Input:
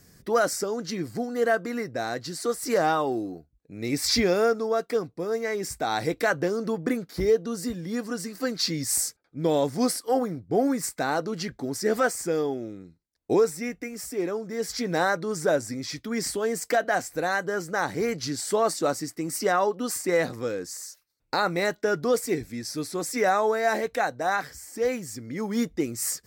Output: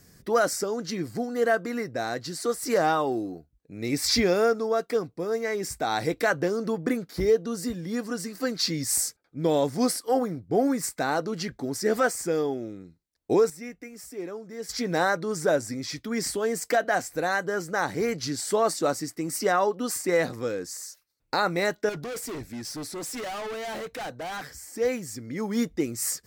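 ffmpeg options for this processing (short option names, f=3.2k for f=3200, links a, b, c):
-filter_complex "[0:a]asettb=1/sr,asplit=3[a][b][c];[a]atrim=end=21.894[d];[b]atrim=start=21.89:end=24.63,asetpts=PTS-STARTPTS,afade=t=in:d=0.004:c=qsin,afade=t=out:st=2.736:d=0.004:c=qsin,volume=32.5dB,asoftclip=hard,volume=-32.5dB[e];[c]atrim=start=24.626[f];[d][e]acrossfade=d=0.004:c1=hsin:c2=qsin[g];[g][f]acrossfade=d=0.004:c1=qsin:c2=hsin,asplit=3[h][i][j];[h]atrim=end=13.502[k];[i]atrim=start=13.498:end=14.692,asetpts=PTS-STARTPTS,volume=-7dB[l];[j]atrim=start=14.688[m];[k][l]acrossfade=d=0.004:c1=hsin:c2=hsin[n];[n][m]acrossfade=d=0.004:c1=hsin:c2=hsin"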